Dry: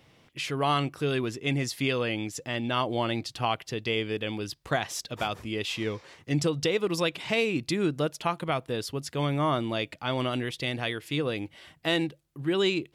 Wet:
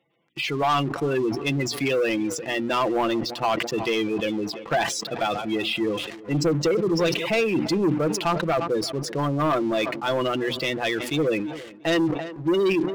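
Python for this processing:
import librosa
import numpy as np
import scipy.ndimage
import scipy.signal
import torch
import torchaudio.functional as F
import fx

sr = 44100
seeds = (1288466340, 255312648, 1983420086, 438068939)

y = fx.reverse_delay(x, sr, ms=259, wet_db=-12, at=(5.07, 7.26))
y = fx.hum_notches(y, sr, base_hz=60, count=5)
y = fx.spec_gate(y, sr, threshold_db=-15, keep='strong')
y = scipy.signal.sosfilt(scipy.signal.butter(2, 200.0, 'highpass', fs=sr, output='sos'), y)
y = fx.high_shelf(y, sr, hz=4700.0, db=-6.5)
y = y + 0.39 * np.pad(y, (int(5.9 * sr / 1000.0), 0))[:len(y)]
y = fx.leveller(y, sr, passes=3)
y = fx.echo_tape(y, sr, ms=342, feedback_pct=60, wet_db=-19.0, lp_hz=2100.0, drive_db=15.0, wow_cents=22)
y = fx.sustainer(y, sr, db_per_s=59.0)
y = y * 10.0 ** (-3.0 / 20.0)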